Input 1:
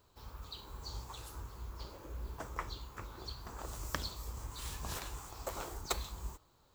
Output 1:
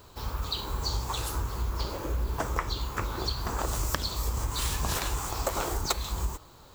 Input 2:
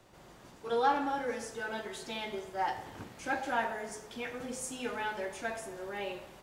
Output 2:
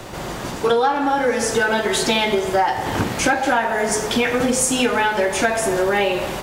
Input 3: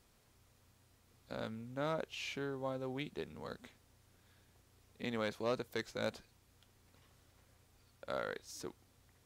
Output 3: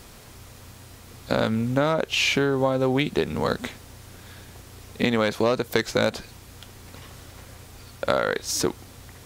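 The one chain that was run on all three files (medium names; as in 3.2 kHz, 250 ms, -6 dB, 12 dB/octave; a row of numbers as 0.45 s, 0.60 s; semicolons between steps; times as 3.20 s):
compression 12:1, threshold -41 dBFS; peak normalisation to -6 dBFS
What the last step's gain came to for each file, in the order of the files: +16.0 dB, +26.5 dB, +23.5 dB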